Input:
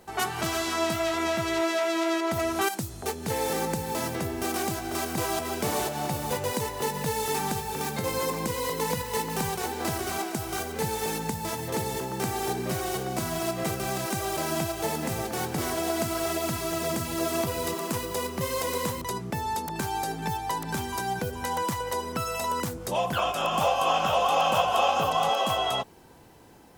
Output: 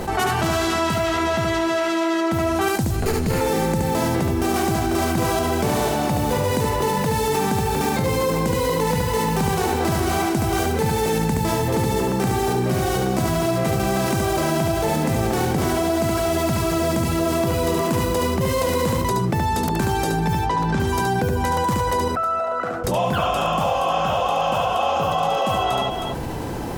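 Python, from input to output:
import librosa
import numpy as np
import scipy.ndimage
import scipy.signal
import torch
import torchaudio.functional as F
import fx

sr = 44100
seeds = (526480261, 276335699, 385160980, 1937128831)

y = fx.lower_of_two(x, sr, delay_ms=0.42, at=(2.91, 3.41))
y = fx.tilt_eq(y, sr, slope=-1.5)
y = fx.rider(y, sr, range_db=10, speed_s=0.5)
y = fx.air_absorb(y, sr, metres=94.0, at=(20.39, 20.8))
y = fx.double_bandpass(y, sr, hz=960.0, octaves=0.91, at=(22.08, 22.84))
y = fx.echo_multitap(y, sr, ms=(72, 315), db=(-4.5, -18.0))
y = fx.env_flatten(y, sr, amount_pct=70)
y = y * 10.0 ** (2.5 / 20.0)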